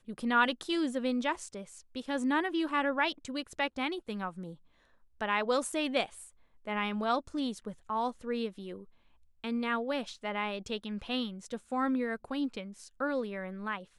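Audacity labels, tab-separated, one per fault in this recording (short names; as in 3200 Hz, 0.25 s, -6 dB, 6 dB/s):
5.720000	5.720000	gap 4.6 ms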